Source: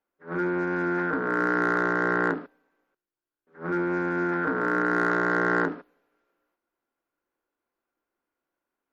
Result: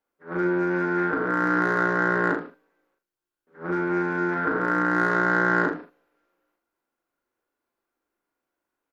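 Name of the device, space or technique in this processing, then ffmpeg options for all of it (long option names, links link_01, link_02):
slapback doubling: -filter_complex "[0:a]asplit=3[link_01][link_02][link_03];[link_02]adelay=39,volume=-3.5dB[link_04];[link_03]adelay=82,volume=-11dB[link_05];[link_01][link_04][link_05]amix=inputs=3:normalize=0"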